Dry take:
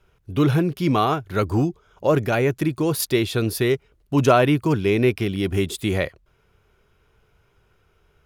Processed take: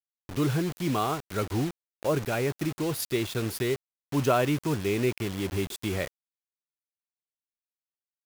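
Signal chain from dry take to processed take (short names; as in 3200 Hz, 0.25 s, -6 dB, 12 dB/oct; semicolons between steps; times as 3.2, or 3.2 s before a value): bit-crush 5-bit; gain -8 dB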